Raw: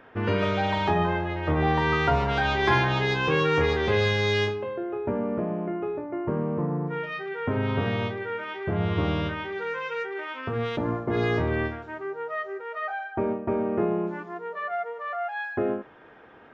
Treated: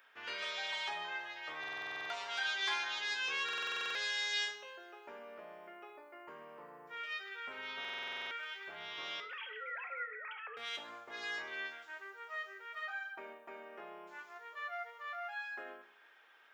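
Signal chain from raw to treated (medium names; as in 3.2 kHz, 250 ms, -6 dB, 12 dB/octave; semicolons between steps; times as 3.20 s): 9.20–10.57 s: formants replaced by sine waves; in parallel at -1.5 dB: gain riding within 4 dB 0.5 s; on the sum: high-pass 710 Hz 6 dB/octave; differentiator; on a send at -6.5 dB: reverberation, pre-delay 3 ms; on the sum: buffer glitch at 1.59/3.44/7.80 s, samples 2048, times 10; trim -2.5 dB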